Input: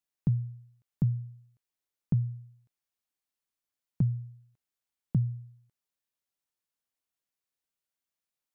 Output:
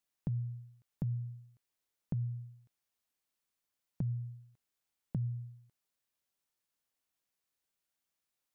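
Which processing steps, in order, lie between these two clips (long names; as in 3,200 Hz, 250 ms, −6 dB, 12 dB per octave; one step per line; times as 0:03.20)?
brickwall limiter −26 dBFS, peak gain reduction 8.5 dB
downward compressor, threshold −35 dBFS, peak gain reduction 7 dB
level +2.5 dB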